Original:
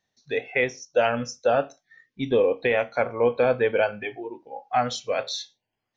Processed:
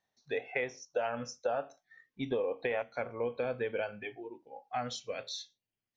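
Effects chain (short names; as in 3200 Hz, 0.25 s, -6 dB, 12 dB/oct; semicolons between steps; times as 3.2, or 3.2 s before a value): bell 890 Hz +7.5 dB 1.7 oct, from 2.82 s -3 dB, from 5.11 s -9.5 dB; compressor 6:1, threshold -21 dBFS, peak gain reduction 10 dB; gain -8.5 dB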